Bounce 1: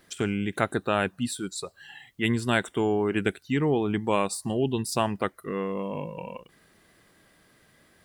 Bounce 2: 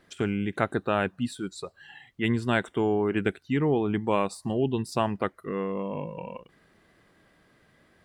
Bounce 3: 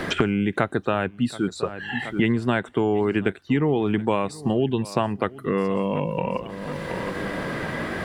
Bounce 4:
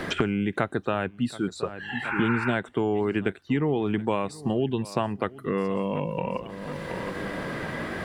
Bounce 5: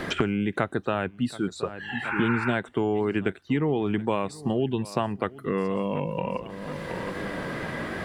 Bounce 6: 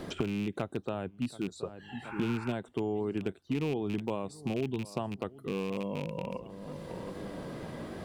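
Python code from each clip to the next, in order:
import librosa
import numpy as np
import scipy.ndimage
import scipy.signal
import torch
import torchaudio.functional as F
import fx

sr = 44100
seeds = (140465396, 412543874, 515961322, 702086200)

y1 = fx.lowpass(x, sr, hz=2600.0, slope=6)
y2 = fx.high_shelf(y1, sr, hz=6500.0, db=-4.5)
y2 = fx.echo_feedback(y2, sr, ms=725, feedback_pct=29, wet_db=-23.0)
y2 = fx.band_squash(y2, sr, depth_pct=100)
y2 = F.gain(torch.from_numpy(y2), 3.5).numpy()
y3 = fx.spec_repair(y2, sr, seeds[0], start_s=2.07, length_s=0.43, low_hz=800.0, high_hz=2800.0, source='after')
y3 = F.gain(torch.from_numpy(y3), -3.5).numpy()
y4 = fx.wow_flutter(y3, sr, seeds[1], rate_hz=2.1, depth_cents=24.0)
y5 = fx.rattle_buzz(y4, sr, strikes_db=-28.0, level_db=-18.0)
y5 = fx.peak_eq(y5, sr, hz=1800.0, db=-12.0, octaves=1.3)
y5 = F.gain(torch.from_numpy(y5), -6.5).numpy()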